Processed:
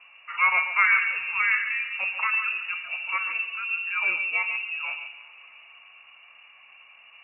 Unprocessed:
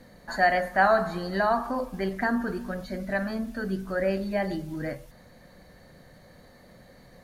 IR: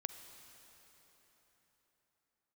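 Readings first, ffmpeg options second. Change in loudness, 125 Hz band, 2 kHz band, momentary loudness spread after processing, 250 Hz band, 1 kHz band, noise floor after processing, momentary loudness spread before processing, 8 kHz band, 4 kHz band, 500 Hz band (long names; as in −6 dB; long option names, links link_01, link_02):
+3.5 dB, below −30 dB, +8.0 dB, 10 LU, below −30 dB, −4.0 dB, −53 dBFS, 12 LU, can't be measured, +5.0 dB, −23.5 dB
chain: -filter_complex "[0:a]lowpass=frequency=2500:width_type=q:width=0.5098,lowpass=frequency=2500:width_type=q:width=0.6013,lowpass=frequency=2500:width_type=q:width=0.9,lowpass=frequency=2500:width_type=q:width=2.563,afreqshift=-2900,asplit=2[link_01][link_02];[link_02]aemphasis=mode=production:type=bsi[link_03];[1:a]atrim=start_sample=2205,adelay=141[link_04];[link_03][link_04]afir=irnorm=-1:irlink=0,volume=-7.5dB[link_05];[link_01][link_05]amix=inputs=2:normalize=0"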